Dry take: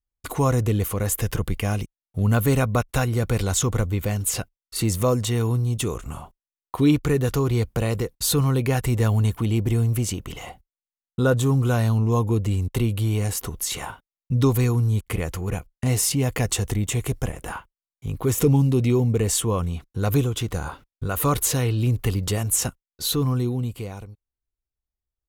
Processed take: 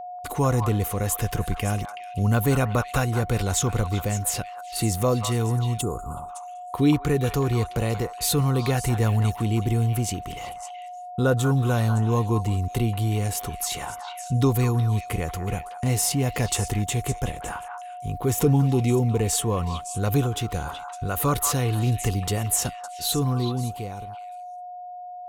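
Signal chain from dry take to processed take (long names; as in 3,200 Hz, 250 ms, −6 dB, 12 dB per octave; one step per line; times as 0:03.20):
steady tone 720 Hz −32 dBFS
echo through a band-pass that steps 187 ms, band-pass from 1,100 Hz, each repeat 1.4 octaves, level −4 dB
gain on a spectral selection 0:05.81–0:06.29, 1,500–6,700 Hz −23 dB
level −1.5 dB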